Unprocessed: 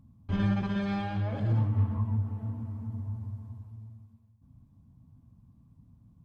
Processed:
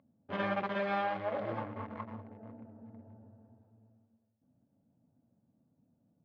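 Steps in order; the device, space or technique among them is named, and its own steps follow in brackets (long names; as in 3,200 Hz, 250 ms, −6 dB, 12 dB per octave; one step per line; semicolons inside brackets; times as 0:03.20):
adaptive Wiener filter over 41 samples
tin-can telephone (band-pass filter 560–2,600 Hz; hollow resonant body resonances 570/1,100/2,100 Hz, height 7 dB)
level +7.5 dB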